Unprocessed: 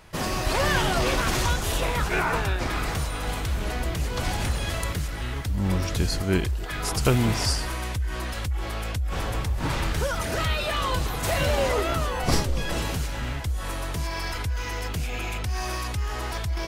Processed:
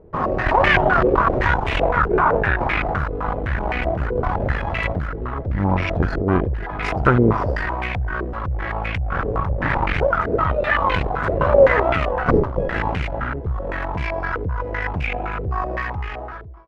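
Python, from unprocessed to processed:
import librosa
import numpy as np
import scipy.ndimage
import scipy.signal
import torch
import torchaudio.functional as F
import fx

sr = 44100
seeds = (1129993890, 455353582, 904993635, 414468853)

y = fx.fade_out_tail(x, sr, length_s=0.93)
y = fx.cheby_harmonics(y, sr, harmonics=(8,), levels_db=(-19,), full_scale_db=-6.0)
y = fx.filter_held_lowpass(y, sr, hz=7.8, low_hz=440.0, high_hz=2300.0)
y = y * librosa.db_to_amplitude(3.0)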